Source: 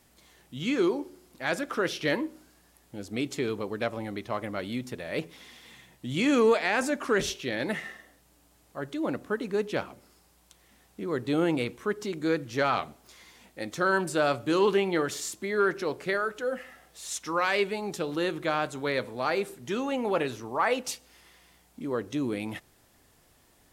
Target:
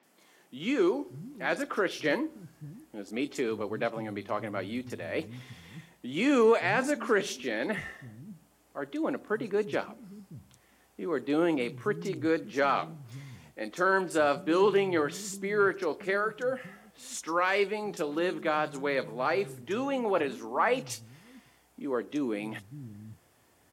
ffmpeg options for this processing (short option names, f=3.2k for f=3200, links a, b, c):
-filter_complex "[0:a]highpass=87,highshelf=f=5.6k:g=-4.5,bandreject=f=3.9k:w=25,acrossover=split=170|4100[a][b][c];[c]adelay=30[d];[a]adelay=580[e];[e][b][d]amix=inputs=3:normalize=0"